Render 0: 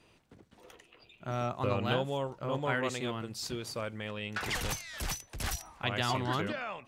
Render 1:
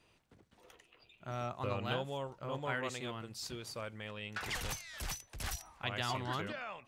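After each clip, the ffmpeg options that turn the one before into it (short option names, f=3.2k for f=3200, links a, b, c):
-af "equalizer=f=270:t=o:w=2.1:g=-3.5,volume=-4.5dB"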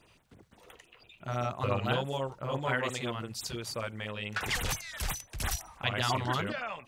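-af "afftfilt=real='re*(1-between(b*sr/1024,250*pow(5800/250,0.5+0.5*sin(2*PI*5.9*pts/sr))/1.41,250*pow(5800/250,0.5+0.5*sin(2*PI*5.9*pts/sr))*1.41))':imag='im*(1-between(b*sr/1024,250*pow(5800/250,0.5+0.5*sin(2*PI*5.9*pts/sr))/1.41,250*pow(5800/250,0.5+0.5*sin(2*PI*5.9*pts/sr))*1.41))':win_size=1024:overlap=0.75,volume=7.5dB"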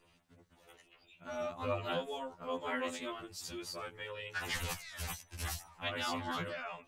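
-af "afftfilt=real='re*2*eq(mod(b,4),0)':imag='im*2*eq(mod(b,4),0)':win_size=2048:overlap=0.75,volume=-3.5dB"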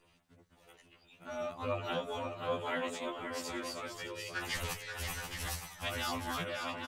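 -af "aecho=1:1:531|618|819:0.473|0.188|0.447"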